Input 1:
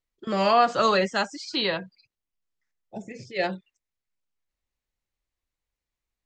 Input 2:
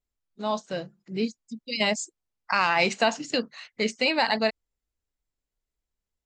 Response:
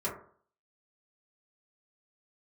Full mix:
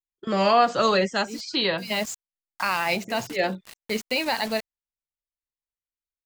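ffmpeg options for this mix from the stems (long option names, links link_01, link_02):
-filter_complex "[0:a]agate=range=-19dB:threshold=-46dB:ratio=16:detection=peak,volume=2dB,asplit=2[link_01][link_02];[1:a]acrusher=bits=5:mix=0:aa=0.000001,adelay=100,volume=-1.5dB[link_03];[link_02]apad=whole_len=280107[link_04];[link_03][link_04]sidechaincompress=threshold=-36dB:ratio=8:attack=11:release=175[link_05];[link_01][link_05]amix=inputs=2:normalize=0,adynamicequalizer=threshold=0.0251:dfrequency=1200:dqfactor=0.8:tfrequency=1200:tqfactor=0.8:attack=5:release=100:ratio=0.375:range=2:mode=cutabove:tftype=bell"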